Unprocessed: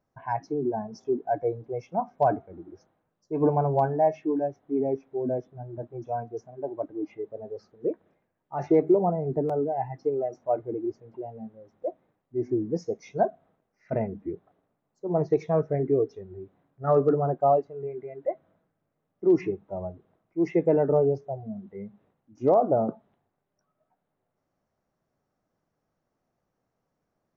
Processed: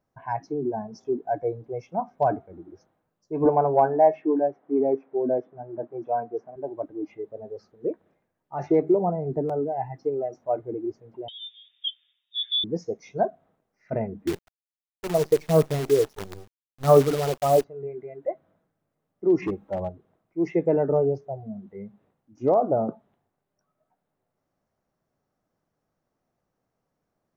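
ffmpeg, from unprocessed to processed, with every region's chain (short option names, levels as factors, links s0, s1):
-filter_complex "[0:a]asettb=1/sr,asplit=3[s0][s1][s2];[s0]atrim=end=3.454[s3];[s1]atrim=start=3.45:end=6.56,asetpts=PTS-STARTPTS,afade=t=in:d=0.004:c=qsin,afade=t=out:st=3.106:d=0.004:c=qsin,acontrast=27,highpass=260,lowpass=2100[s4];[s2]atrim=start=6.556[s5];[s3][s4]acrossfade=d=0.004:c1=hsin:c2=qsin[s6];[s6][s5]acrossfade=d=0.004:c1=qsin:c2=hsin,asettb=1/sr,asplit=3[s7][s8][s9];[s7]atrim=end=11.284[s10];[s8]atrim=start=11.28:end=12.64,asetpts=PTS-STARTPTS,afade=t=in:d=0.004:c=qsin,afade=t=out:st=1.356:d=0.004:c=qsin,lowpass=f=3200:t=q:w=0.5098,lowpass=f=3200:t=q:w=0.6013,lowpass=f=3200:t=q:w=0.9,lowpass=f=3200:t=q:w=2.563,afreqshift=-3800,aecho=1:1:7.2:0.39,atrim=end_sample=59976[s11];[s9]atrim=start=12.636[s12];[s10][s11]acrossfade=d=0.004:c1=hsin:c2=qsin[s13];[s13][s12]acrossfade=d=0.004:c1=qsin:c2=hsin,asettb=1/sr,asplit=3[s14][s15][s16];[s14]atrim=end=14.274[s17];[s15]atrim=start=14.27:end=17.64,asetpts=PTS-STARTPTS,afade=t=in:d=0.004:c=qsin,afade=t=out:st=3.366:d=0.004:c=qsin,aphaser=in_gain=1:out_gain=1:delay=2.2:decay=0.54:speed=1.5:type=sinusoidal,acrusher=bits=6:dc=4:mix=0:aa=0.000001[s18];[s16]atrim=start=17.636[s19];[s17][s18]acrossfade=d=0.004:c1=hsin:c2=qsin[s20];[s20][s19]acrossfade=d=0.004:c1=qsin:c2=hsin,asettb=1/sr,asplit=3[s21][s22][s23];[s21]atrim=end=19.424[s24];[s22]atrim=start=19.42:end=19.89,asetpts=PTS-STARTPTS,afade=t=in:d=0.004:c=qsin,afade=t=out:st=0.466:d=0.004:c=qsin,aecho=1:1:3.7:0.45,atrim=end_sample=20727,acontrast=20,asoftclip=type=hard:threshold=0.0794[s25];[s23]atrim=start=19.886[s26];[s24][s25]acrossfade=d=0.004:c1=hsin:c2=qsin[s27];[s27][s26]acrossfade=d=0.004:c1=qsin:c2=hsin"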